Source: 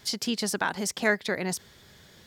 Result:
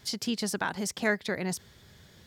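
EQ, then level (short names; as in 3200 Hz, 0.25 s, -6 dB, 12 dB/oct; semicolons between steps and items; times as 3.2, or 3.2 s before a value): bell 83 Hz +6.5 dB 2.4 oct; -3.5 dB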